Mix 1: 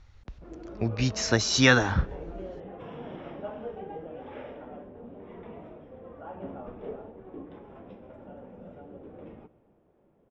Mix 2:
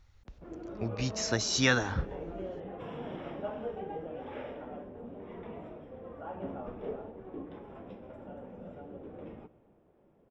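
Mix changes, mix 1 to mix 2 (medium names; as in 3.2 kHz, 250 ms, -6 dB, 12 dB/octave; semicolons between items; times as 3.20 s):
speech -7.0 dB; master: remove distance through air 55 m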